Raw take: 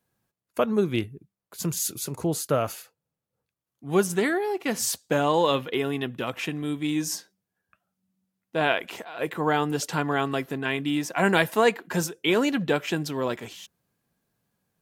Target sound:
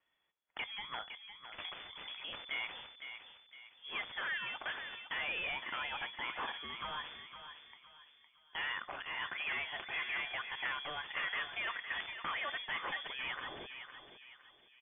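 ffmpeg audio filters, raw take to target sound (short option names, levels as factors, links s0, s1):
-filter_complex "[0:a]equalizer=f=370:t=o:w=2:g=-12.5,acrossover=split=2000[s0][s1];[s1]alimiter=level_in=1.06:limit=0.0631:level=0:latency=1:release=23,volume=0.944[s2];[s0][s2]amix=inputs=2:normalize=0,acrossover=split=1000|2100[s3][s4][s5];[s3]acompressor=threshold=0.00562:ratio=4[s6];[s4]acompressor=threshold=0.02:ratio=4[s7];[s5]acompressor=threshold=0.00398:ratio=4[s8];[s6][s7][s8]amix=inputs=3:normalize=0,asoftclip=type=hard:threshold=0.0237,crystalizer=i=6:c=0,aeval=exprs='0.224*(cos(1*acos(clip(val(0)/0.224,-1,1)))-cos(1*PI/2))+0.0891*(cos(3*acos(clip(val(0)/0.224,-1,1)))-cos(3*PI/2))+0.00282*(cos(4*acos(clip(val(0)/0.224,-1,1)))-cos(4*PI/2))':c=same,asplit=2[s9][s10];[s10]adelay=510,lowpass=f=2300:p=1,volume=0.422,asplit=2[s11][s12];[s12]adelay=510,lowpass=f=2300:p=1,volume=0.45,asplit=2[s13][s14];[s14]adelay=510,lowpass=f=2300:p=1,volume=0.45,asplit=2[s15][s16];[s16]adelay=510,lowpass=f=2300:p=1,volume=0.45,asplit=2[s17][s18];[s18]adelay=510,lowpass=f=2300:p=1,volume=0.45[s19];[s9][s11][s13][s15][s17][s19]amix=inputs=6:normalize=0,lowpass=f=3000:t=q:w=0.5098,lowpass=f=3000:t=q:w=0.6013,lowpass=f=3000:t=q:w=0.9,lowpass=f=3000:t=q:w=2.563,afreqshift=-3500,volume=3.98"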